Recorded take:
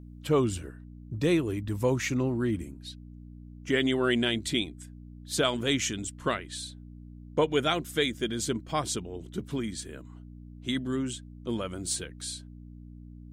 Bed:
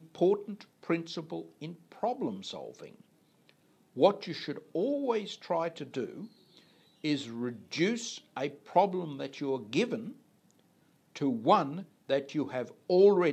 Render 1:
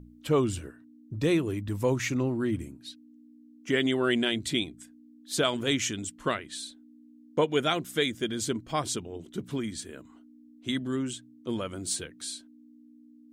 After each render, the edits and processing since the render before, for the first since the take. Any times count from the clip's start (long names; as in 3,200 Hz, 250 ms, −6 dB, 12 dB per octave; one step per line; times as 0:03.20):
hum removal 60 Hz, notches 3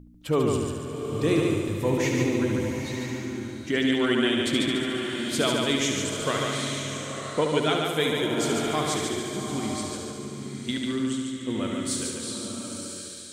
echo machine with several playback heads 72 ms, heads first and second, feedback 58%, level −6 dB
slow-attack reverb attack 950 ms, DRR 4.5 dB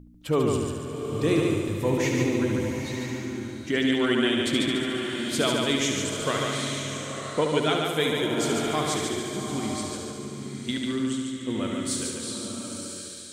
no processing that can be heard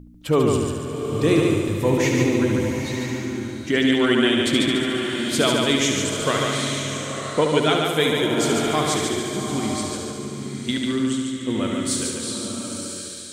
level +5 dB